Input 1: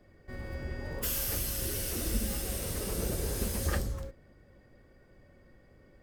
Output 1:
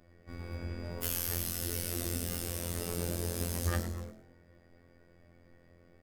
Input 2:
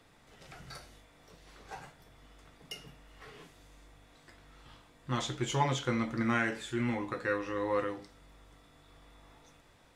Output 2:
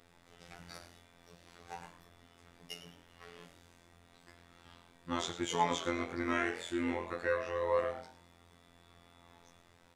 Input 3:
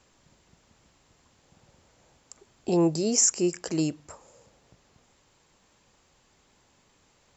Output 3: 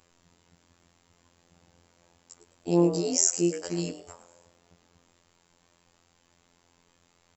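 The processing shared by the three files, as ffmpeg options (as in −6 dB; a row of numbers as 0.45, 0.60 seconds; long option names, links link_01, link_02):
-filter_complex "[0:a]afftfilt=real='hypot(re,im)*cos(PI*b)':imag='0':win_size=2048:overlap=0.75,asplit=4[link_01][link_02][link_03][link_04];[link_02]adelay=105,afreqshift=130,volume=-13dB[link_05];[link_03]adelay=210,afreqshift=260,volume=-23.2dB[link_06];[link_04]adelay=315,afreqshift=390,volume=-33.3dB[link_07];[link_01][link_05][link_06][link_07]amix=inputs=4:normalize=0,volume=1.5dB"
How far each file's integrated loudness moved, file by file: −1.5, −2.5, −0.5 LU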